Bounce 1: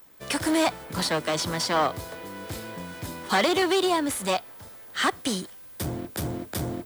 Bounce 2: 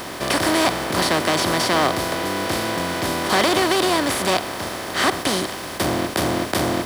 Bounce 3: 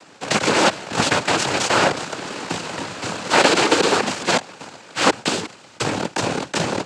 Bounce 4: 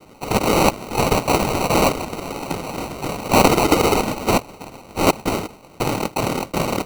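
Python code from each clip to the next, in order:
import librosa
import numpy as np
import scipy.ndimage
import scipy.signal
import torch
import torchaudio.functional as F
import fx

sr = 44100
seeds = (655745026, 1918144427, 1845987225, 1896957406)

y1 = fx.bin_compress(x, sr, power=0.4)
y2 = fx.cheby_harmonics(y1, sr, harmonics=(3, 7), levels_db=(-35, -18), full_scale_db=-5.5)
y2 = fx.noise_vocoder(y2, sr, seeds[0], bands=8)
y2 = F.gain(torch.from_numpy(y2), 4.0).numpy()
y3 = fx.sample_hold(y2, sr, seeds[1], rate_hz=1700.0, jitter_pct=0)
y3 = F.gain(torch.from_numpy(y3), 1.0).numpy()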